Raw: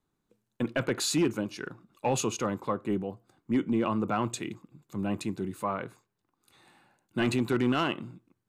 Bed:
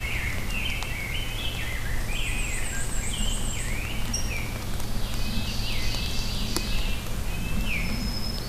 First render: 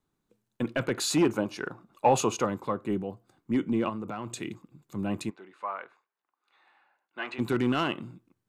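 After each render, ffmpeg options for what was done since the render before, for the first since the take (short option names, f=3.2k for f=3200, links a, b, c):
-filter_complex "[0:a]asettb=1/sr,asplit=3[a][b][c];[a]atrim=end=1.104[d];[b]atrim=start=1.1:end=2.45,asetpts=PTS-STARTPTS,afade=t=in:d=0.004:c=qsin,afade=t=out:st=1.346:d=0.004:c=qsin,equalizer=f=790:t=o:w=1.7:g=8.5[e];[c]atrim=start=2.446[f];[d][e]acrossfade=d=0.004:c1=hsin:c2=qsin[g];[g][f]acrossfade=d=0.004:c1=qsin:c2=hsin,asettb=1/sr,asplit=3[h][i][j];[h]atrim=end=3.894[k];[i]atrim=start=3.89:end=4.39,asetpts=PTS-STARTPTS,afade=t=in:d=0.004:c=qsin,afade=t=out:st=0.496:d=0.004:c=qsin,acompressor=threshold=-32dB:ratio=4:attack=3.2:release=140:knee=1:detection=peak[l];[j]atrim=start=4.386[m];[k][l]acrossfade=d=0.004:c1=hsin:c2=qsin[n];[n][m]acrossfade=d=0.004:c1=qsin:c2=hsin,asplit=3[o][p][q];[o]afade=t=out:st=5.29:d=0.02[r];[p]highpass=790,lowpass=2.4k,afade=t=in:st=5.29:d=0.02,afade=t=out:st=7.38:d=0.02[s];[q]afade=t=in:st=7.38:d=0.02[t];[r][s][t]amix=inputs=3:normalize=0"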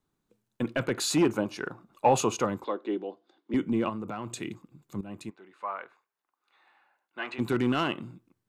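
-filter_complex "[0:a]asettb=1/sr,asplit=3[a][b][c];[a]atrim=end=2.644[d];[b]atrim=start=2.64:end=3.54,asetpts=PTS-STARTPTS,afade=t=in:d=0.004:c=qsin,afade=t=out:st=0.896:d=0.004:c=qsin,highpass=f=290:w=0.5412,highpass=f=290:w=1.3066,equalizer=f=330:t=q:w=4:g=4,equalizer=f=1.2k:t=q:w=4:g=-5,equalizer=f=2.4k:t=q:w=4:g=-3,equalizer=f=3.5k:t=q:w=4:g=8,lowpass=f=5.2k:w=0.5412,lowpass=f=5.2k:w=1.3066[e];[c]atrim=start=3.536[f];[d][e]acrossfade=d=0.004:c1=hsin:c2=qsin[g];[g][f]acrossfade=d=0.004:c1=qsin:c2=hsin,asplit=2[h][i];[h]atrim=end=5.01,asetpts=PTS-STARTPTS,afade=t=out:st=5.006:d=0.004:c=hsin:silence=0.177828[j];[i]atrim=start=5.01,asetpts=PTS-STARTPTS,afade=t=in:d=0.69:silence=0.177828[k];[j][k]concat=n=2:v=0:a=1"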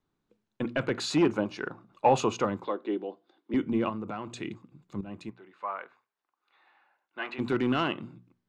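-af "lowpass=4.8k,bandreject=f=60:t=h:w=6,bandreject=f=120:t=h:w=6,bandreject=f=180:t=h:w=6,bandreject=f=240:t=h:w=6"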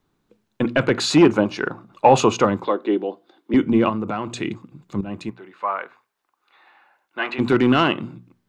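-af "volume=10.5dB,alimiter=limit=-2dB:level=0:latency=1"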